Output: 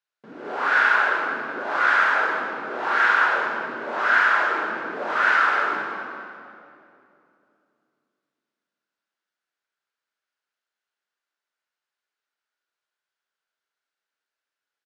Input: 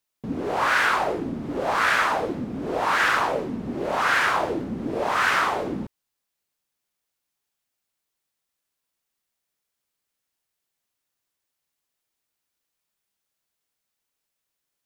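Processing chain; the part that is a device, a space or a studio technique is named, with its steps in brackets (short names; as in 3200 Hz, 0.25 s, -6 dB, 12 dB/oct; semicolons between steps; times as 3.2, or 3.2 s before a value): station announcement (BPF 390–4800 Hz; bell 1500 Hz +10 dB 0.45 oct; loudspeakers at several distances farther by 14 m -11 dB, 70 m -7 dB; reverb RT60 2.7 s, pre-delay 3 ms, DRR 0.5 dB); gain -6.5 dB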